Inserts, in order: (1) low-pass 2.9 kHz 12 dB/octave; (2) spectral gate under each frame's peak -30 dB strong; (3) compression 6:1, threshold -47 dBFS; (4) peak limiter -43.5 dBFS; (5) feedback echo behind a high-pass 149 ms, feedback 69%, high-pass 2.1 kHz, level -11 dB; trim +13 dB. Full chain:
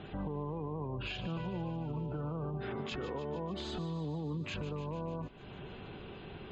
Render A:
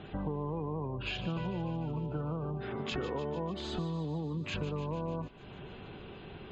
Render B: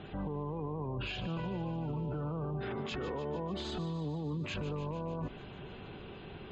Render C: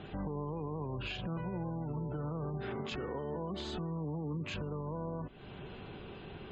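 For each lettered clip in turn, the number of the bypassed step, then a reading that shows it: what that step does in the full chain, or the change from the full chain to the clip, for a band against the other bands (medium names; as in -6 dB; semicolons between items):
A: 4, mean gain reduction 1.5 dB; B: 3, mean gain reduction 10.5 dB; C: 5, echo-to-direct -13.5 dB to none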